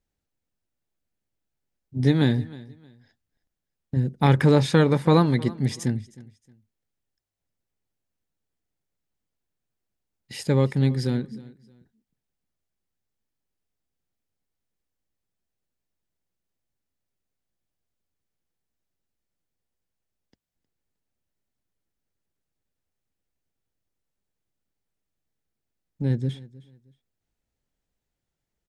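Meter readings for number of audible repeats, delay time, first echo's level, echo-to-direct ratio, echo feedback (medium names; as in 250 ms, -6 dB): 2, 312 ms, -20.5 dB, -20.0 dB, 27%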